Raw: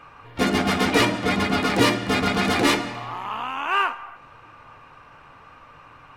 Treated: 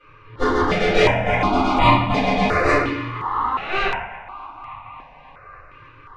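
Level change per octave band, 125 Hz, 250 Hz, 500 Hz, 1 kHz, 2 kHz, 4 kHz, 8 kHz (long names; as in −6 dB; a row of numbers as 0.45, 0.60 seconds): +4.5 dB, 0.0 dB, +5.0 dB, +5.5 dB, +2.0 dB, −2.5 dB, can't be measured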